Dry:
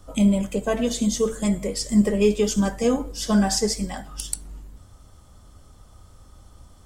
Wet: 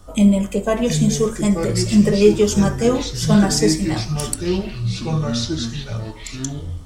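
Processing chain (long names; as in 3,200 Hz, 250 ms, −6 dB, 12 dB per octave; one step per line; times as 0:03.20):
delay with pitch and tempo change per echo 662 ms, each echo −5 semitones, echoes 3, each echo −6 dB
on a send: convolution reverb, pre-delay 3 ms, DRR 7 dB
on the sum: level +3.5 dB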